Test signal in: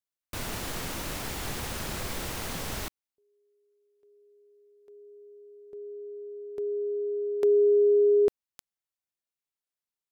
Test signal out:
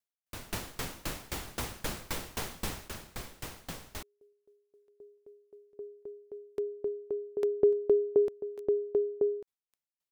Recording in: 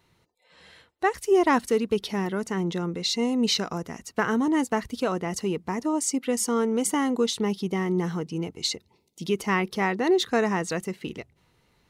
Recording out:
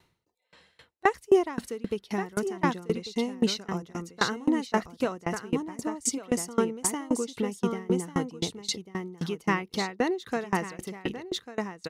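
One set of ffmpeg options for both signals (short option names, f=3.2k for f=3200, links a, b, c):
-filter_complex "[0:a]asplit=2[a][b];[b]aecho=0:1:1145:0.562[c];[a][c]amix=inputs=2:normalize=0,aeval=exprs='val(0)*pow(10,-26*if(lt(mod(3.8*n/s,1),2*abs(3.8)/1000),1-mod(3.8*n/s,1)/(2*abs(3.8)/1000),(mod(3.8*n/s,1)-2*abs(3.8)/1000)/(1-2*abs(3.8)/1000))/20)':c=same,volume=3dB"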